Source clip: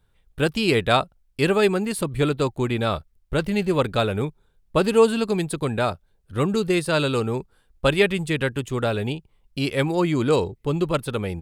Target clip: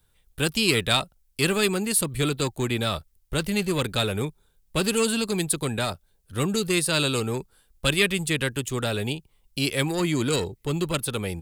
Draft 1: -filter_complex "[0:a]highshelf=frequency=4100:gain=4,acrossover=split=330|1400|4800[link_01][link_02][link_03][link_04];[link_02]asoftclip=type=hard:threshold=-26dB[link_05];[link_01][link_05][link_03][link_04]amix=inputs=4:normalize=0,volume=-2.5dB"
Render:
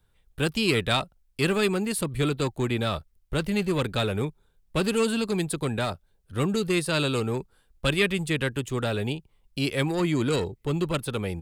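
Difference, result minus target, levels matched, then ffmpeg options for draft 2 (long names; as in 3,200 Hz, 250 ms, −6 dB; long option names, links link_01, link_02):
8,000 Hz band −7.0 dB
-filter_complex "[0:a]highshelf=frequency=4100:gain=14.5,acrossover=split=330|1400|4800[link_01][link_02][link_03][link_04];[link_02]asoftclip=type=hard:threshold=-26dB[link_05];[link_01][link_05][link_03][link_04]amix=inputs=4:normalize=0,volume=-2.5dB"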